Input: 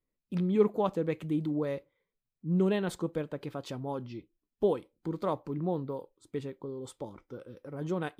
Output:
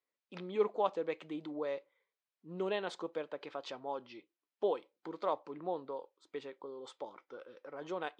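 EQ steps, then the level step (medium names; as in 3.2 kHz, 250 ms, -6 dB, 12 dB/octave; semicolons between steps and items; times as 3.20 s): dynamic bell 1.6 kHz, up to -5 dB, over -47 dBFS, Q 0.96; band-pass 650–6600 Hz; distance through air 92 m; +3.0 dB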